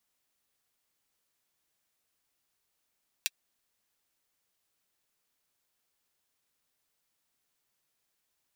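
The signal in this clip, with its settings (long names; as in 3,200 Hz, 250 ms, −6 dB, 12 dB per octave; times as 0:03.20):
closed synth hi-hat, high-pass 2,600 Hz, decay 0.04 s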